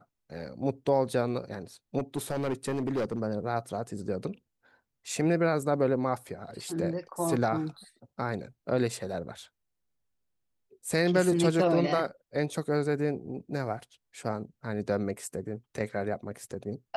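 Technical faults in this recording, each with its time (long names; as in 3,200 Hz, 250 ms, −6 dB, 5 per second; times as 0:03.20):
0:01.98–0:03.21: clipping −25.5 dBFS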